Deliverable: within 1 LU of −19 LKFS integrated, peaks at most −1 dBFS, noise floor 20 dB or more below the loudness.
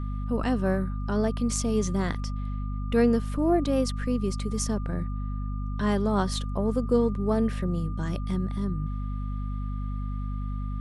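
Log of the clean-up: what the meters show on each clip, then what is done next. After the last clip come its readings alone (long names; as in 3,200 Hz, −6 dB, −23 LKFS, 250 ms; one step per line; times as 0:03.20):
mains hum 50 Hz; hum harmonics up to 250 Hz; level of the hum −28 dBFS; interfering tone 1,200 Hz; level of the tone −45 dBFS; integrated loudness −28.0 LKFS; sample peak −10.5 dBFS; target loudness −19.0 LKFS
→ mains-hum notches 50/100/150/200/250 Hz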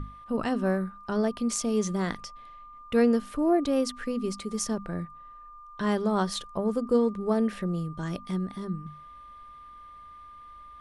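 mains hum none found; interfering tone 1,200 Hz; level of the tone −45 dBFS
→ notch filter 1,200 Hz, Q 30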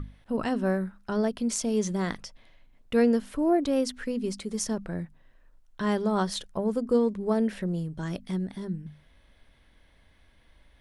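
interfering tone none found; integrated loudness −28.5 LKFS; sample peak −12.5 dBFS; target loudness −19.0 LKFS
→ level +9.5 dB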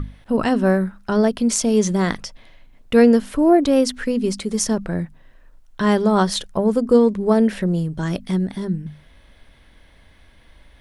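integrated loudness −19.0 LKFS; sample peak −3.0 dBFS; background noise floor −51 dBFS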